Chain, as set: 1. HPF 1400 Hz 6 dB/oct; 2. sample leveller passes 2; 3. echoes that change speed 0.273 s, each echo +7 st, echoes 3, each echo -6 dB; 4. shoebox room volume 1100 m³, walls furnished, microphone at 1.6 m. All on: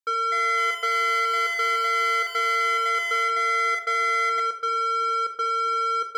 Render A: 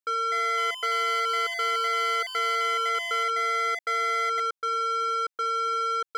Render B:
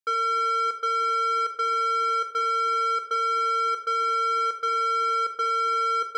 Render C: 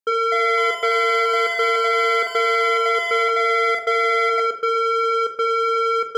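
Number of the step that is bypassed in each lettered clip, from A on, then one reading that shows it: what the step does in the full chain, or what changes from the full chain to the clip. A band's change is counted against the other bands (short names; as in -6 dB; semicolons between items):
4, echo-to-direct -4.0 dB to none; 3, 2 kHz band -9.5 dB; 1, 500 Hz band +9.0 dB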